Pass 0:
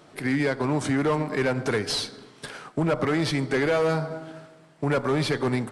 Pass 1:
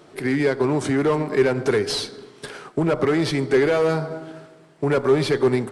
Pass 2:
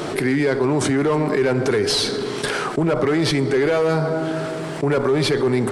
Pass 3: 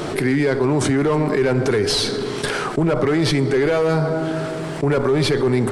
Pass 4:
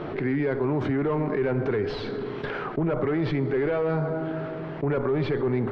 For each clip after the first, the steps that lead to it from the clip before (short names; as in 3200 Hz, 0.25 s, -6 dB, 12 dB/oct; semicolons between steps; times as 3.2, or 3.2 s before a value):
bell 390 Hz +9 dB 0.36 oct; gain +1.5 dB
fast leveller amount 70%; gain -3 dB
low shelf 88 Hz +9.5 dB
Bessel low-pass 2100 Hz, order 4; gain -7 dB